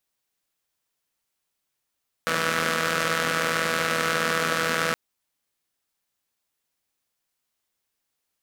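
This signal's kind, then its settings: four-cylinder engine model, steady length 2.67 s, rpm 4900, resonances 240/510/1300 Hz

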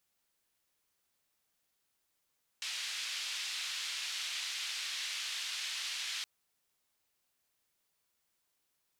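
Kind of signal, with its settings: noise band 2.8–3.7 kHz, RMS -39 dBFS 3.62 s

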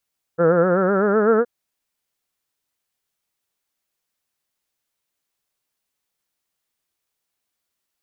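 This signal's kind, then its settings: formant-synthesis vowel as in heard, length 1.07 s, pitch 163 Hz, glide +6 st, vibrato 7.9 Hz, vibrato depth 0.85 st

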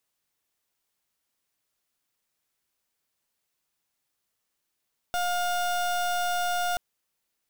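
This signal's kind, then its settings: pulse 710 Hz, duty 31% -27 dBFS 1.63 s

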